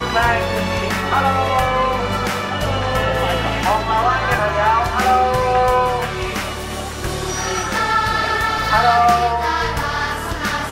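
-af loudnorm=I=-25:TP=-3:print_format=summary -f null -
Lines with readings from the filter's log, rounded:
Input Integrated:    -17.5 LUFS
Input True Peak:      -2.3 dBTP
Input LRA:             1.8 LU
Input Threshold:     -27.5 LUFS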